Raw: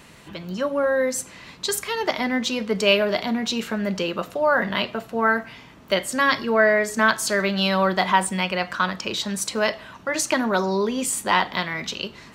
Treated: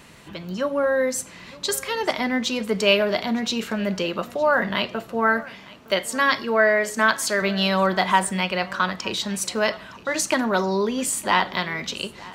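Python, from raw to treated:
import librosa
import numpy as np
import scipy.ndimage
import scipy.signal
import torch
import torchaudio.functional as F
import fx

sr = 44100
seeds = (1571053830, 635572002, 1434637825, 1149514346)

y = fx.low_shelf(x, sr, hz=180.0, db=-8.0, at=(5.44, 7.42))
y = y + 10.0 ** (-21.5 / 20.0) * np.pad(y, (int(912 * sr / 1000.0), 0))[:len(y)]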